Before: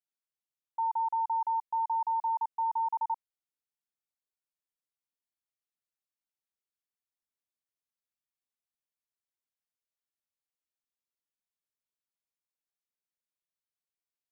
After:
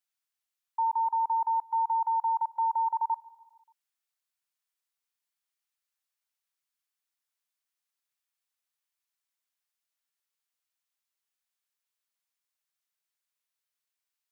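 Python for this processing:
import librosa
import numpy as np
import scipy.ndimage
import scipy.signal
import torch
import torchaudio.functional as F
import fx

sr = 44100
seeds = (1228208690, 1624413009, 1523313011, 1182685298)

p1 = scipy.signal.sosfilt(scipy.signal.butter(2, 950.0, 'highpass', fs=sr, output='sos'), x)
p2 = p1 + fx.echo_feedback(p1, sr, ms=145, feedback_pct=59, wet_db=-22.5, dry=0)
y = p2 * 10.0 ** (6.5 / 20.0)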